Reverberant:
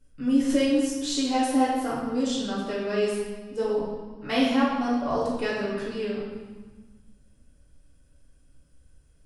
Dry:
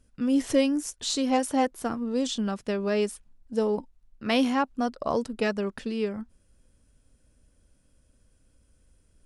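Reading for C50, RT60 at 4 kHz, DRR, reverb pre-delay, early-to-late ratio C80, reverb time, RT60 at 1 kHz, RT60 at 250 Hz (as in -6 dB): 1.0 dB, 1.2 s, -8.5 dB, 4 ms, 3.0 dB, 1.3 s, 1.4 s, 1.9 s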